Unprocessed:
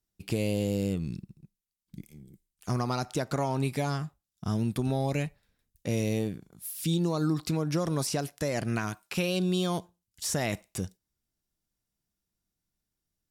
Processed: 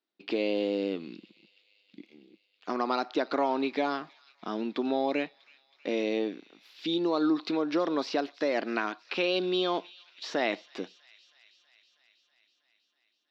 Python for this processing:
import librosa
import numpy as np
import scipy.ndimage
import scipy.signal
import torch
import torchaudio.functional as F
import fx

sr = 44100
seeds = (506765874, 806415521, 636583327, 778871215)

y = scipy.signal.sosfilt(scipy.signal.ellip(3, 1.0, 40, [280.0, 4100.0], 'bandpass', fs=sr, output='sos'), x)
y = fx.echo_wet_highpass(y, sr, ms=322, feedback_pct=72, hz=2700.0, wet_db=-18.0)
y = y * librosa.db_to_amplitude(4.0)